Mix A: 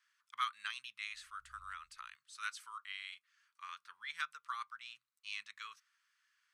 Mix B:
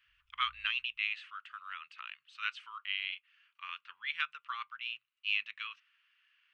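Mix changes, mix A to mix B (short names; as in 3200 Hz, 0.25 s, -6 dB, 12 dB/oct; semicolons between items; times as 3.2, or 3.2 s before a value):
speech: add synth low-pass 2800 Hz, resonance Q 6.1; background: entry -1.05 s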